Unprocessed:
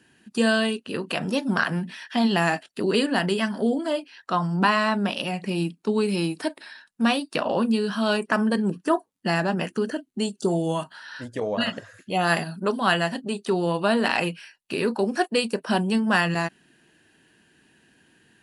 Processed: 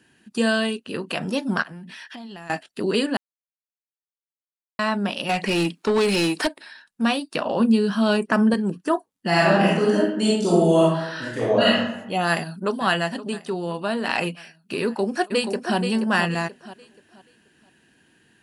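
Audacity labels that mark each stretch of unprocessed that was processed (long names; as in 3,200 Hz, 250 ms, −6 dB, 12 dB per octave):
1.620000	2.500000	downward compressor 12 to 1, threshold −35 dBFS
3.170000	4.790000	silence
5.290000	6.470000	mid-hump overdrive drive 21 dB, tone 5,300 Hz, clips at −12 dBFS
7.600000	8.540000	low-shelf EQ 450 Hz +6.5 dB
9.280000	11.760000	thrown reverb, RT60 0.89 s, DRR −7 dB
12.280000	12.790000	delay throw 520 ms, feedback 70%, level −16 dB
13.410000	14.080000	clip gain −4 dB
14.820000	15.770000	delay throw 480 ms, feedback 30%, level −7 dB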